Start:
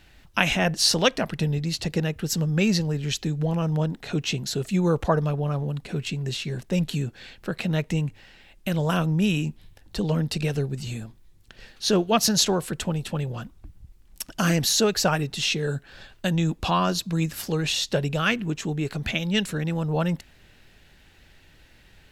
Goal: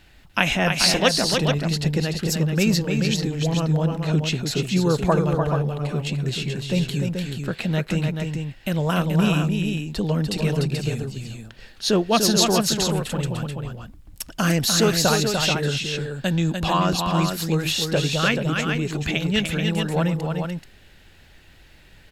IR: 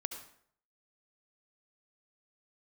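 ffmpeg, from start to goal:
-filter_complex "[0:a]bandreject=frequency=5900:width=21,asplit=2[link_01][link_02];[link_02]aecho=0:1:296|432:0.531|0.501[link_03];[link_01][link_03]amix=inputs=2:normalize=0,volume=1.5dB"

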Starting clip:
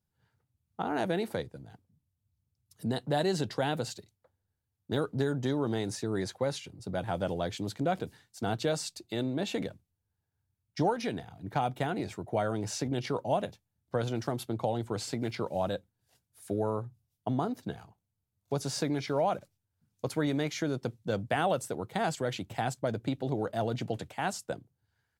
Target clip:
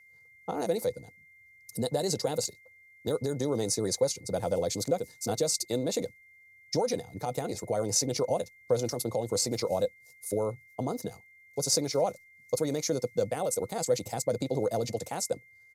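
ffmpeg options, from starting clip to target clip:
ffmpeg -i in.wav -af "alimiter=limit=-21.5dB:level=0:latency=1:release=310,aexciter=amount=4.5:drive=3.9:freq=4200,aresample=32000,aresample=44100,atempo=1.6,equalizer=frequency=500:width_type=o:width=0.33:gain=12,equalizer=frequency=1600:width_type=o:width=0.33:gain=-8,equalizer=frequency=3150:width_type=o:width=0.33:gain=-6,equalizer=frequency=6300:width_type=o:width=0.33:gain=4,aeval=exprs='val(0)+0.00178*sin(2*PI*2100*n/s)':channel_layout=same" out.wav

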